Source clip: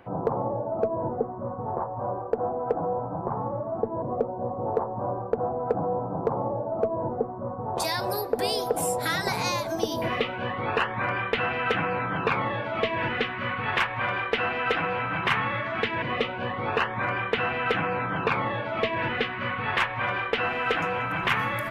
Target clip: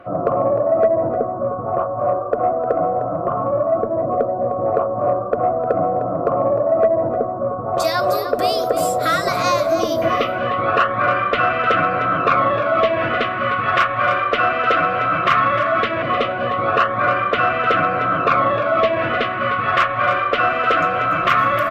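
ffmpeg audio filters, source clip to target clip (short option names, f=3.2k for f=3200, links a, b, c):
-filter_complex "[0:a]superequalizer=6b=1.58:8b=3.16:9b=0.447:10b=3.16:16b=0.501,acontrast=60,asplit=2[a][b];[b]aecho=0:1:305:0.282[c];[a][c]amix=inputs=2:normalize=0,volume=-2dB"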